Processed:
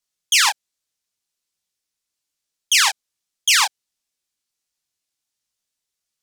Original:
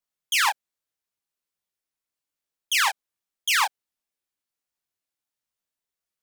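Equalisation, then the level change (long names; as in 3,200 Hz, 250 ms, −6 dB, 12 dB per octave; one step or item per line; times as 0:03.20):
low-shelf EQ 420 Hz +6.5 dB
parametric band 5,900 Hz +13 dB 2.6 octaves
−2.0 dB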